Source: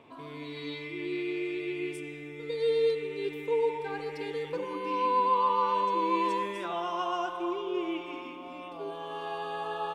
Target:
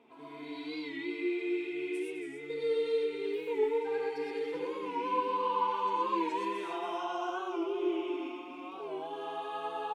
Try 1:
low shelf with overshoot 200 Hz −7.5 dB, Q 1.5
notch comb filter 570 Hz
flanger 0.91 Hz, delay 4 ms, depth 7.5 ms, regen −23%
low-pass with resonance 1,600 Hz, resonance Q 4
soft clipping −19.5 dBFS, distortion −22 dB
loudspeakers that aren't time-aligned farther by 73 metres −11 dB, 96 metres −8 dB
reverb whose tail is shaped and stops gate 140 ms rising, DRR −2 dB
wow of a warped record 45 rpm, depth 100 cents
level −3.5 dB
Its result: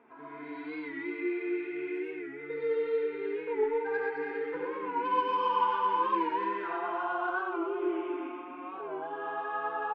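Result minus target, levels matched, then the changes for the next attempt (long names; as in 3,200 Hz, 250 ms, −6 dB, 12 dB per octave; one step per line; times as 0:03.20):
2,000 Hz band +3.5 dB
remove: low-pass with resonance 1,600 Hz, resonance Q 4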